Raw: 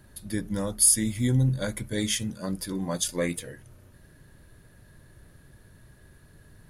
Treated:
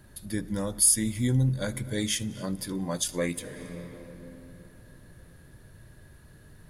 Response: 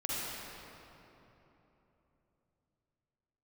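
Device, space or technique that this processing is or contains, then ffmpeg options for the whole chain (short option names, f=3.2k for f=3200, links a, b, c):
ducked reverb: -filter_complex "[0:a]asplit=3[a][b][c];[1:a]atrim=start_sample=2205[d];[b][d]afir=irnorm=-1:irlink=0[e];[c]apad=whole_len=295111[f];[e][f]sidechaincompress=threshold=-45dB:ratio=8:attack=21:release=110,volume=-10dB[g];[a][g]amix=inputs=2:normalize=0,volume=-1.5dB"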